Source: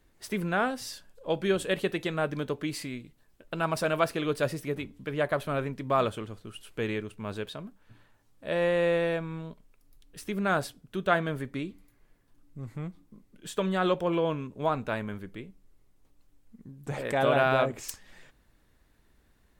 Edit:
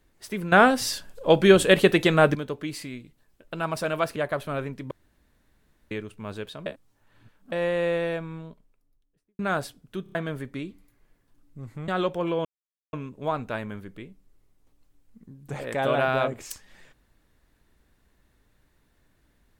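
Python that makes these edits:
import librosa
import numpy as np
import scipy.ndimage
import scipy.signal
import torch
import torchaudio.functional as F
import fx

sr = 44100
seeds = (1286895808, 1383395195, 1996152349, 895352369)

y = fx.studio_fade_out(x, sr, start_s=9.18, length_s=1.21)
y = fx.edit(y, sr, fx.clip_gain(start_s=0.52, length_s=1.83, db=11.0),
    fx.cut(start_s=4.16, length_s=1.0),
    fx.room_tone_fill(start_s=5.91, length_s=1.0),
    fx.reverse_span(start_s=7.66, length_s=0.86),
    fx.stutter_over(start_s=11.03, slice_s=0.03, count=4),
    fx.cut(start_s=12.88, length_s=0.86),
    fx.insert_silence(at_s=14.31, length_s=0.48), tone=tone)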